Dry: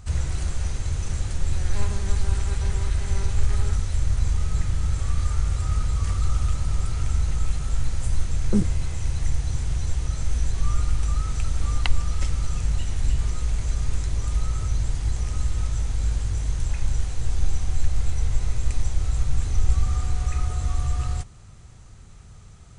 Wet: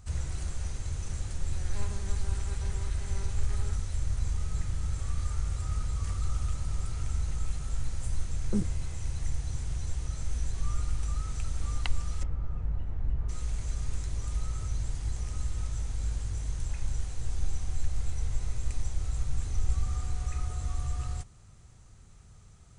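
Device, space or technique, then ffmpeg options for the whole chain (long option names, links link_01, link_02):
exciter from parts: -filter_complex "[0:a]asplit=3[link_01][link_02][link_03];[link_01]afade=type=out:start_time=12.22:duration=0.02[link_04];[link_02]lowpass=1200,afade=type=in:start_time=12.22:duration=0.02,afade=type=out:start_time=13.28:duration=0.02[link_05];[link_03]afade=type=in:start_time=13.28:duration=0.02[link_06];[link_04][link_05][link_06]amix=inputs=3:normalize=0,asplit=2[link_07][link_08];[link_08]highpass=4600,asoftclip=type=tanh:threshold=-36.5dB,volume=-7dB[link_09];[link_07][link_09]amix=inputs=2:normalize=0,volume=-8dB"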